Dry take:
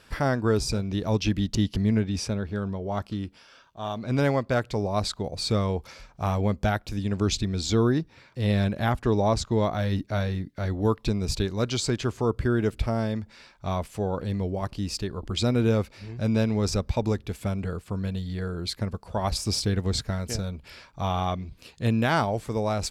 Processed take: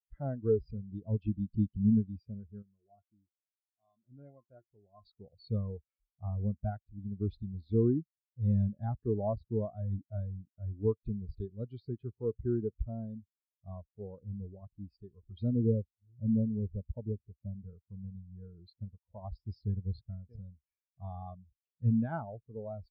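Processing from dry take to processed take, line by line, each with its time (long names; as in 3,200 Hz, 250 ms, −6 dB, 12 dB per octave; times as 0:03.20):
0:02.62–0:05.05: tuned comb filter 350 Hz, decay 0.15 s, mix 70%
0:15.52–0:17.56: low-pass filter 1,000 Hz
whole clip: Butterworth low-pass 4,800 Hz; every bin expanded away from the loudest bin 2.5 to 1; level −5.5 dB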